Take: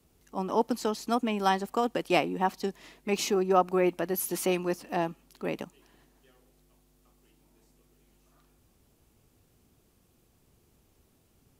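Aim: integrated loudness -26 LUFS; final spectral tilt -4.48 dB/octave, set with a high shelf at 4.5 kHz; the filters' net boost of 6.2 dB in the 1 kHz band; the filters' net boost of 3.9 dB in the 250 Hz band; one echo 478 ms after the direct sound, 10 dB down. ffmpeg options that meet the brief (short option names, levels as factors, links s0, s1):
-af "equalizer=f=250:t=o:g=5,equalizer=f=1000:t=o:g=8,highshelf=f=4500:g=6,aecho=1:1:478:0.316,volume=0.841"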